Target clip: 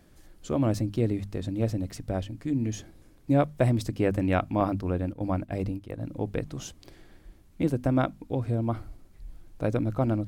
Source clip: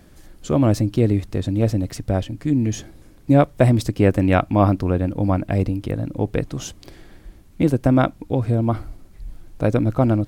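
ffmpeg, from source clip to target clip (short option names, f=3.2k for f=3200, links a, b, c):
-filter_complex "[0:a]bandreject=f=50:t=h:w=6,bandreject=f=100:t=h:w=6,bandreject=f=150:t=h:w=6,bandreject=f=200:t=h:w=6,bandreject=f=250:t=h:w=6,asettb=1/sr,asplit=3[a][b][c];[a]atrim=end=4.604[d];[b]atrim=start=4.6:end=6.01,asetpts=PTS-STARTPTS,afade=t=in:d=0.004:c=qsin,afade=t=out:st=1.406:d=0.004:c=qsin,agate=range=-9dB:threshold=-23dB:ratio=16:detection=peak[e];[c]atrim=start=6.006[f];[d][e]acrossfade=d=0.004:c1=hsin:c2=qsin[g];[g][f]acrossfade=d=0.004:c1=qsin:c2=hsin,volume=-8dB"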